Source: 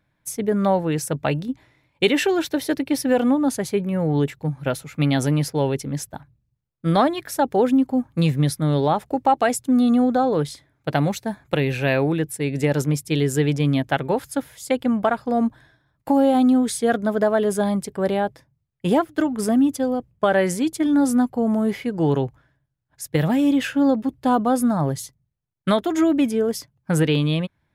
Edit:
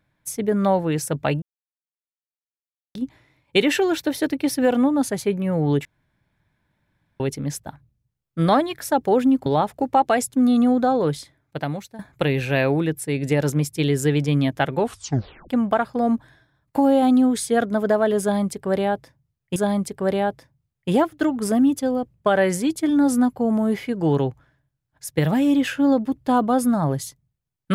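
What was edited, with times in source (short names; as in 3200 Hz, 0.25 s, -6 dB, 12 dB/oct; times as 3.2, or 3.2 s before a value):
1.42 insert silence 1.53 s
4.32–5.67 room tone
7.93–8.78 cut
10.46–11.31 fade out, to -15.5 dB
14.11 tape stop 0.70 s
17.53–18.88 loop, 2 plays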